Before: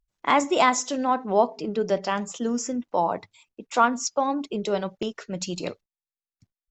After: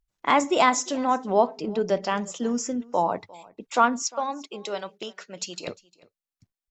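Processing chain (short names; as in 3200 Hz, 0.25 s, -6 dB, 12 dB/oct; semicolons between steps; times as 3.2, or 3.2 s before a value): 4.02–5.68 HPF 870 Hz 6 dB/oct; on a send: echo 0.352 s -23 dB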